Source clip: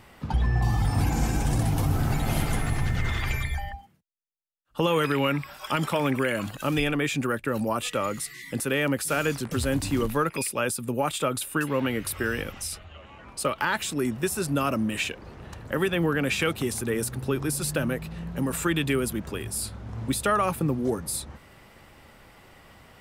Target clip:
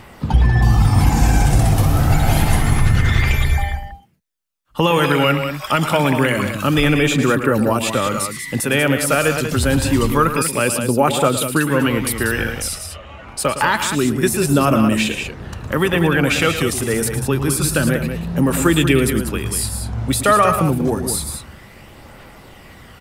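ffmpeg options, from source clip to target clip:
-af "aecho=1:1:110.8|189.5:0.282|0.398,aphaser=in_gain=1:out_gain=1:delay=1.7:decay=0.27:speed=0.27:type=triangular,volume=8.5dB"

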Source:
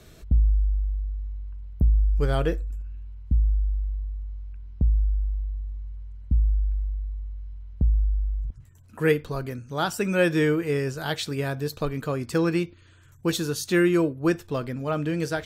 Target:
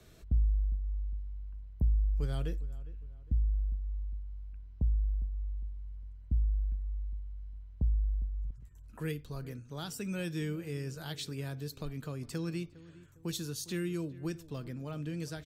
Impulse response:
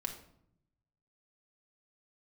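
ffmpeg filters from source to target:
-filter_complex "[0:a]acrossover=split=250|3000[a][b][c];[b]acompressor=threshold=-39dB:ratio=3[d];[a][d][c]amix=inputs=3:normalize=0,asplit=2[e][f];[f]adelay=406,lowpass=f=1.7k:p=1,volume=-18dB,asplit=2[g][h];[h]adelay=406,lowpass=f=1.7k:p=1,volume=0.41,asplit=2[i][j];[j]adelay=406,lowpass=f=1.7k:p=1,volume=0.41[k];[g][i][k]amix=inputs=3:normalize=0[l];[e][l]amix=inputs=2:normalize=0,volume=-8dB"

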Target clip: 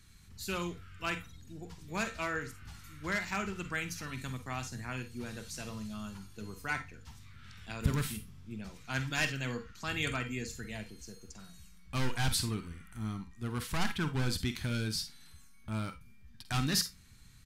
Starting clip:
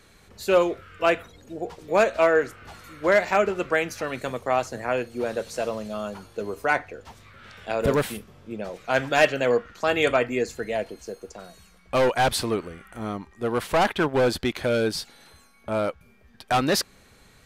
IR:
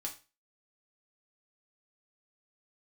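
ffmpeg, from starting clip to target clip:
-filter_complex "[0:a]firequalizer=gain_entry='entry(120,0);entry(530,-27);entry(900,-15);entry(1500,-11);entry(5100,-4)':delay=0.05:min_phase=1,asplit=2[a][b];[1:a]atrim=start_sample=2205,asetrate=70560,aresample=44100,adelay=46[c];[b][c]afir=irnorm=-1:irlink=0,volume=-4dB[d];[a][d]amix=inputs=2:normalize=0"

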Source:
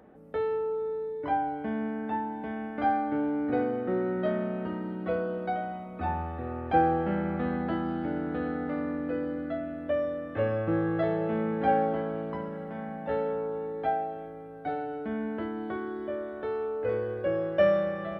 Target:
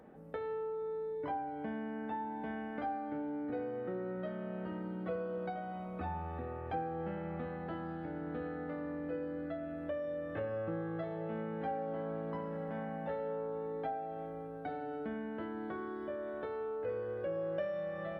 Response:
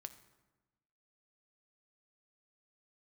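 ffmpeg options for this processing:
-filter_complex "[0:a]acompressor=threshold=-35dB:ratio=6[a];[1:a]atrim=start_sample=2205,asetrate=57330,aresample=44100[b];[a][b]afir=irnorm=-1:irlink=0,volume=6dB"

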